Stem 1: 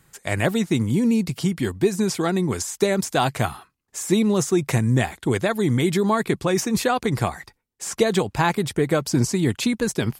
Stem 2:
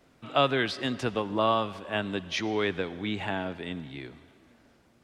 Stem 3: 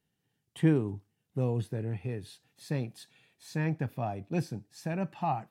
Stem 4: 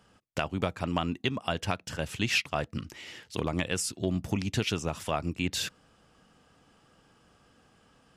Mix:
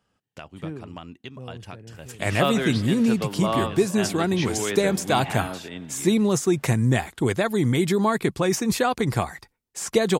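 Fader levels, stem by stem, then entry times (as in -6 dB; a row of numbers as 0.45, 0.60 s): -1.0, -0.5, -10.0, -10.0 dB; 1.95, 2.05, 0.00, 0.00 s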